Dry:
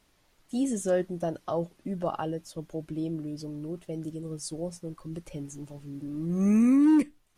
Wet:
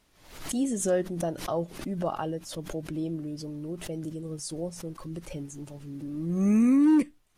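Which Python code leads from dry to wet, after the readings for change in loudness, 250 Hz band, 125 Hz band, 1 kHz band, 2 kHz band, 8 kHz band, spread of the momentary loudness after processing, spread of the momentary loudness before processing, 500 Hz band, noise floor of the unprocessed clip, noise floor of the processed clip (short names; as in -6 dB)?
0.0 dB, 0.0 dB, +0.5 dB, +0.5 dB, +1.5 dB, +4.5 dB, 18 LU, 18 LU, +0.5 dB, -67 dBFS, -61 dBFS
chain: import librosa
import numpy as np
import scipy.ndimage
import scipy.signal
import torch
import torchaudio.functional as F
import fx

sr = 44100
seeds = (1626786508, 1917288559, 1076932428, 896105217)

y = fx.pre_swell(x, sr, db_per_s=85.0)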